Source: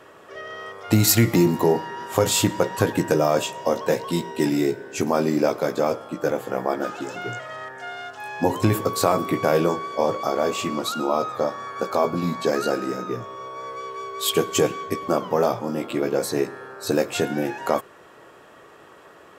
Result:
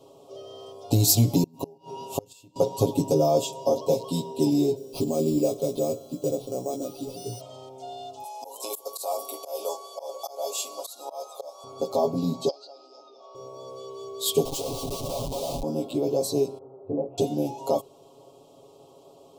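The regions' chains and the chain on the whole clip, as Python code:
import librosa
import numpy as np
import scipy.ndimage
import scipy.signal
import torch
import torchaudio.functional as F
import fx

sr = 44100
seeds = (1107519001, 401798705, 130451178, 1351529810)

y = fx.chain(x, sr, fx.gate_flip(shuts_db=-12.0, range_db=-31),
    fx.small_body(hz=(2700.0,), ring_ms=25, db=17), at=(1.43, 2.56))
y = fx.chain(y, sr, fx.peak_eq(hz=900.0, db=-14.5, octaves=0.65),
    fx.resample_bad(factor=6, down='none', up='hold'), at=(4.76, 7.41))
y = fx.chain(y, sr, fx.highpass(hz=560.0, slope=24),
    fx.peak_eq(hz=11000.0, db=13.0, octaves=0.89),
    fx.auto_swell(attack_ms=226.0), at=(8.24, 11.64))
y = fx.chain(y, sr, fx.level_steps(step_db=20),
    fx.cabinet(low_hz=450.0, low_slope=24, high_hz=5300.0, hz=(460.0, 800.0, 1300.0, 1900.0, 3300.0, 4800.0), db=(-10, 5, 7, -9, 5, 10)), at=(12.48, 13.35))
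y = fx.chain(y, sr, fx.highpass(hz=580.0, slope=24),
    fx.schmitt(flips_db=-32.0), at=(14.45, 15.63))
y = fx.chain(y, sr, fx.gaussian_blur(sigma=6.4),
    fx.detune_double(cents=49), at=(16.58, 17.18))
y = scipy.signal.sosfilt(scipy.signal.cheby1(2, 1.0, [740.0, 3900.0], 'bandstop', fs=sr, output='sos'), y)
y = y + 0.94 * np.pad(y, (int(7.3 * sr / 1000.0), 0))[:len(y)]
y = y * librosa.db_to_amplitude(-4.0)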